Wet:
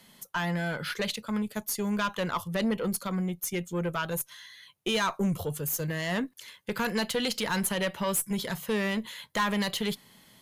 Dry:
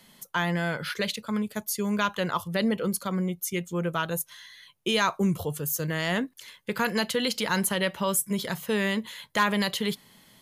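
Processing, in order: valve stage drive 20 dB, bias 0.3

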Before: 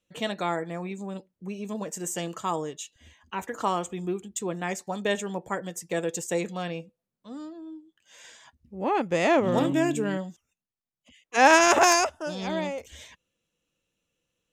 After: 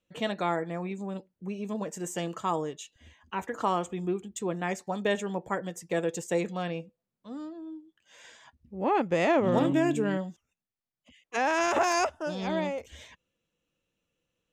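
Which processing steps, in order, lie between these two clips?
treble shelf 4.5 kHz -8.5 dB; peak limiter -15 dBFS, peak gain reduction 11.5 dB

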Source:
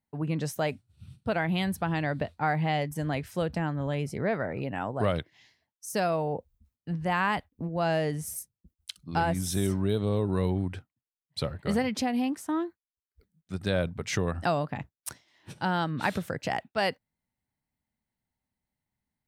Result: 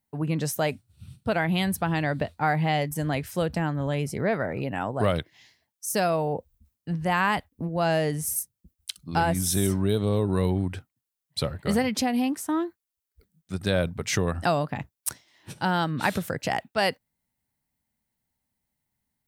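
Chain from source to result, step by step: treble shelf 7.7 kHz +9 dB; trim +3 dB

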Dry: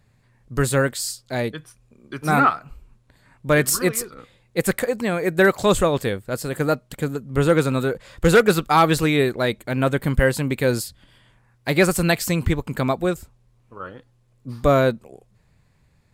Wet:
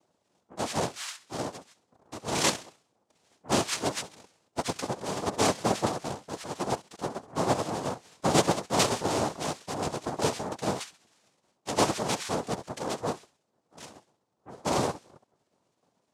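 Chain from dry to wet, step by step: sawtooth pitch modulation -10.5 st, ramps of 293 ms; band-passed feedback delay 66 ms, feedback 53%, band-pass 1.9 kHz, level -13 dB; noise-vocoded speech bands 2; trim -8.5 dB

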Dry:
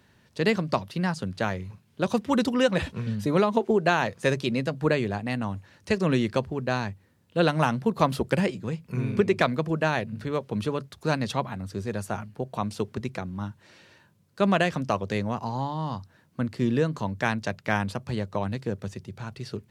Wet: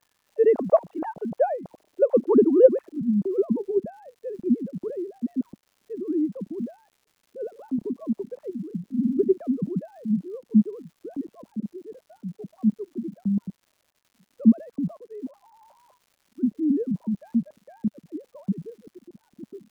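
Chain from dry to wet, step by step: formants replaced by sine waves; low-pass sweep 660 Hz -> 210 Hz, 1.81–3.68 s; crackle 250 per s -53 dBFS; trim +2.5 dB

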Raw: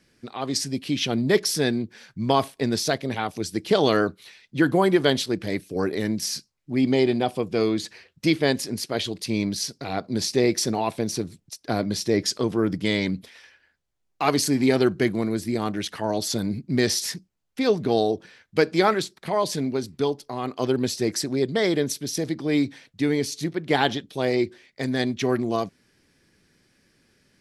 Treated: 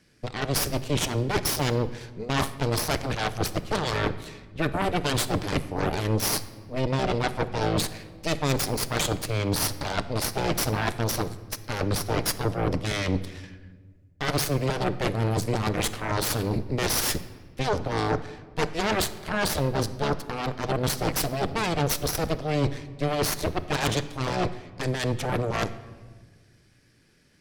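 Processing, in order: octave divider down 1 oct, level -4 dB; reverse; compression 12:1, threshold -27 dBFS, peak gain reduction 15 dB; reverse; Chebyshev shaper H 8 -7 dB, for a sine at -15 dBFS; simulated room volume 1500 m³, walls mixed, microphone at 0.45 m

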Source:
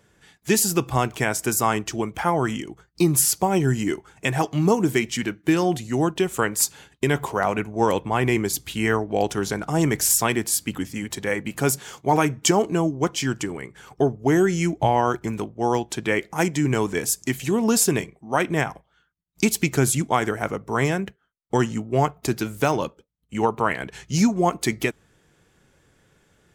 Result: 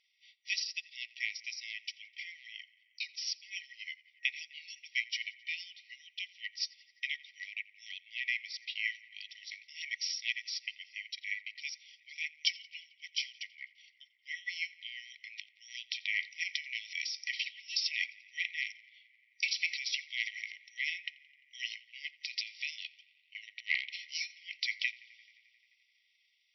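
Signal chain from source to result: transient shaper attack 0 dB, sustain -10 dB, from 14.10 s sustain +4 dB, from 15.37 s sustain +11 dB; tape echo 86 ms, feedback 89%, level -21 dB, low-pass 4.5 kHz; FFT band-pass 1.9–5.8 kHz; trim -4.5 dB

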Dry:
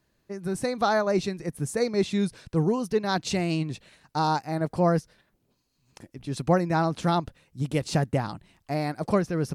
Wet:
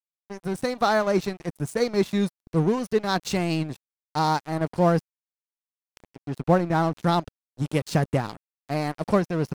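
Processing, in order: 6.24–7.03 s: treble shelf 4 kHz -10 dB; crossover distortion -38 dBFS; trim +3 dB

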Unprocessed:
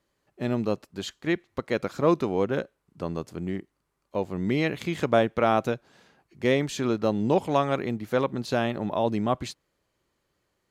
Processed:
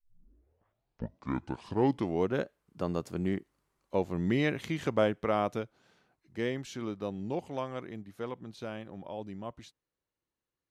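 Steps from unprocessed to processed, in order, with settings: tape start-up on the opening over 2.72 s; Doppler pass-by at 3.40 s, 27 m/s, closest 26 m

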